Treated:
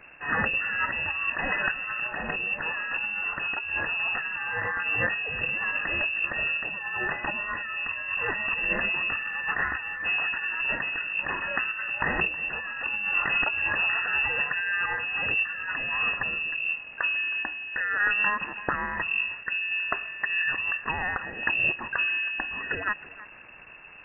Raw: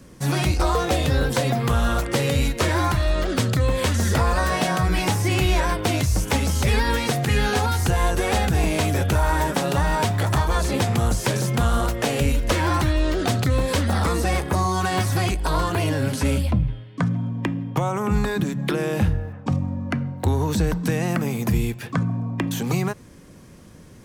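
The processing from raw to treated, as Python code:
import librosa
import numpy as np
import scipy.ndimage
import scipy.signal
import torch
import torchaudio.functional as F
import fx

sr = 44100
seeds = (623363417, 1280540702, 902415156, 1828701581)

y = scipy.signal.sosfilt(scipy.signal.cheby1(4, 1.0, [110.0, 870.0], 'bandstop', fs=sr, output='sos'), x)
y = fx.peak_eq(y, sr, hz=840.0, db=8.0, octaves=0.97)
y = fx.over_compress(y, sr, threshold_db=-26.0, ratio=-1.0)
y = fx.dmg_crackle(y, sr, seeds[0], per_s=460.0, level_db=-31.0)
y = fx.tremolo_random(y, sr, seeds[1], hz=3.5, depth_pct=55)
y = y + 10.0 ** (-18.0 / 20.0) * np.pad(y, (int(318 * sr / 1000.0), 0))[:len(y)]
y = fx.freq_invert(y, sr, carrier_hz=2700)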